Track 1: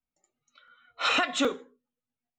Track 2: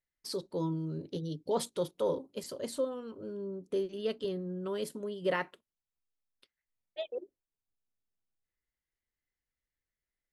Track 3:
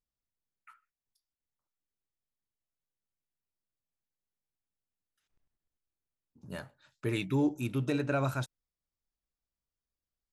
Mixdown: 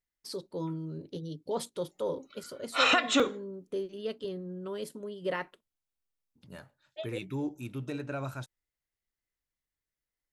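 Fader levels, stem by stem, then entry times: +1.0 dB, -2.0 dB, -6.0 dB; 1.75 s, 0.00 s, 0.00 s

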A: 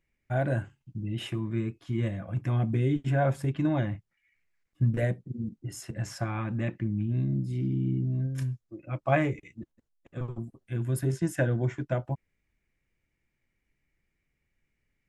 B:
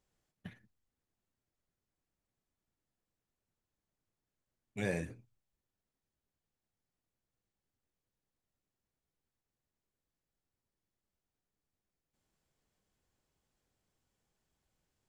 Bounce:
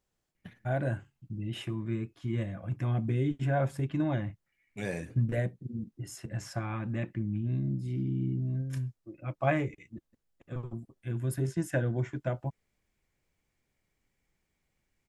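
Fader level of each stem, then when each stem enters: -3.0 dB, 0.0 dB; 0.35 s, 0.00 s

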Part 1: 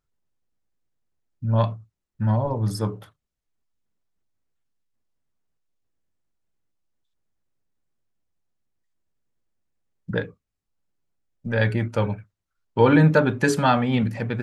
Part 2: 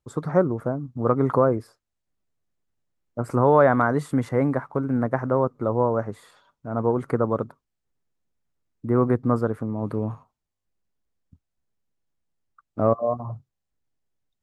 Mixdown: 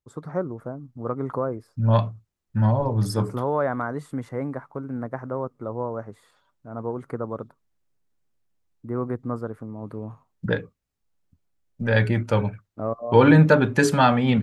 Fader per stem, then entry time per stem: +1.5 dB, -7.5 dB; 0.35 s, 0.00 s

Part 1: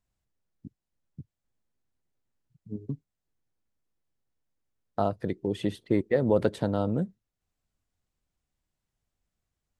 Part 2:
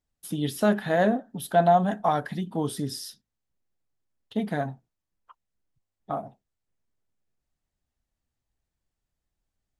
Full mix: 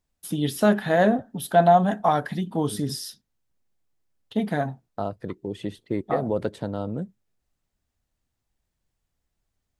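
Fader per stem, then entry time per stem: -2.5 dB, +3.0 dB; 0.00 s, 0.00 s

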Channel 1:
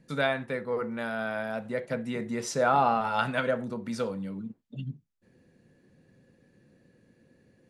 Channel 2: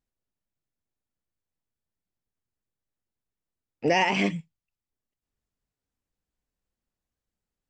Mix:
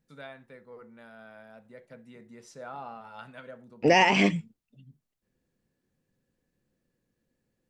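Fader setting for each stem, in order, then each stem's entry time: -17.5 dB, +2.5 dB; 0.00 s, 0.00 s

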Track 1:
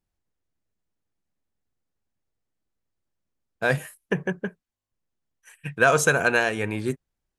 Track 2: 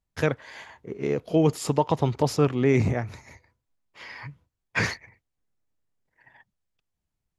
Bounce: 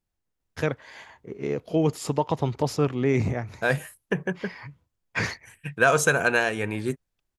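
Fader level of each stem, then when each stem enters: -1.0 dB, -2.0 dB; 0.00 s, 0.40 s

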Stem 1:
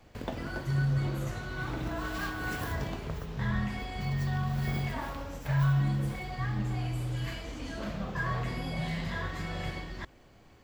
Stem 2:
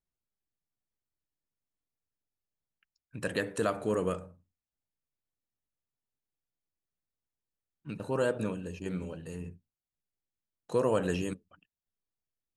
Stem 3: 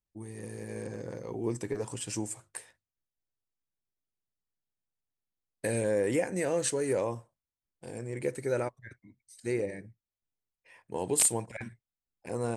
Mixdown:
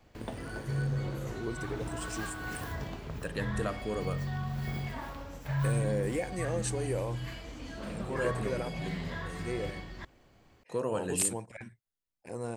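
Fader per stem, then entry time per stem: -4.0 dB, -5.0 dB, -5.0 dB; 0.00 s, 0.00 s, 0.00 s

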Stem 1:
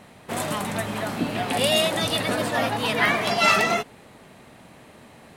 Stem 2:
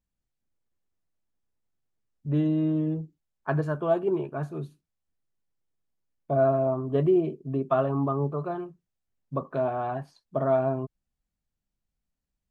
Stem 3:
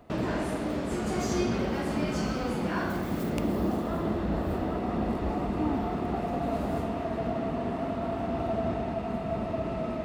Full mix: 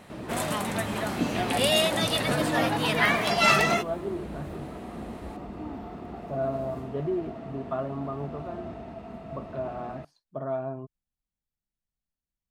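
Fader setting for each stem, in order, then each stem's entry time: -2.0 dB, -7.5 dB, -9.0 dB; 0.00 s, 0.00 s, 0.00 s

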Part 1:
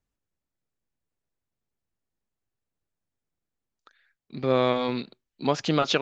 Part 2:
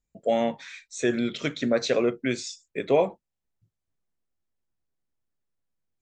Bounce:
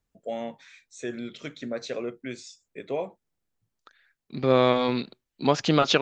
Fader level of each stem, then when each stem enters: +2.5 dB, -9.0 dB; 0.00 s, 0.00 s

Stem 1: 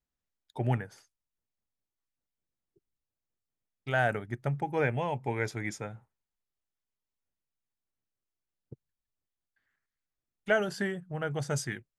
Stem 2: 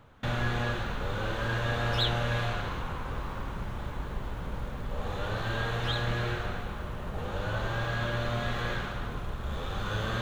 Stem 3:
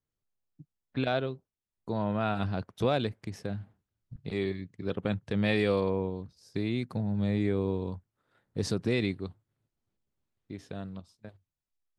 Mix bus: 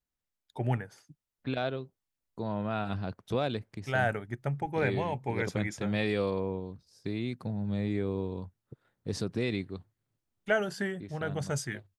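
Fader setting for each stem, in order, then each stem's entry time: -1.0 dB, mute, -3.0 dB; 0.00 s, mute, 0.50 s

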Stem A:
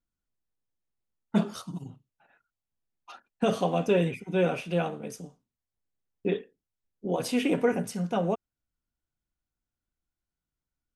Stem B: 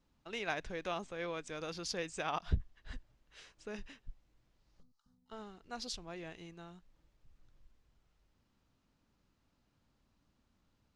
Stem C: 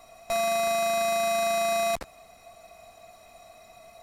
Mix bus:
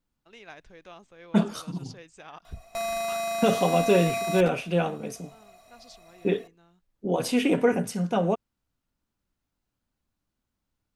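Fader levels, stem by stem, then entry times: +3.0 dB, -8.5 dB, -4.0 dB; 0.00 s, 0.00 s, 2.45 s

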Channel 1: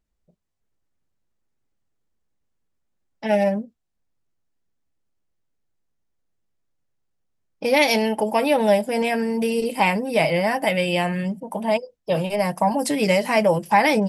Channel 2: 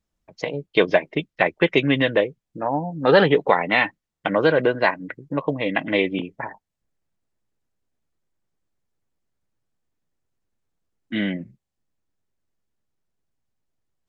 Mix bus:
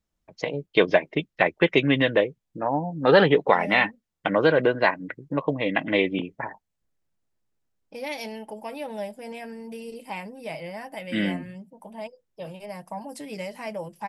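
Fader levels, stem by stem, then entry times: -15.5 dB, -1.5 dB; 0.30 s, 0.00 s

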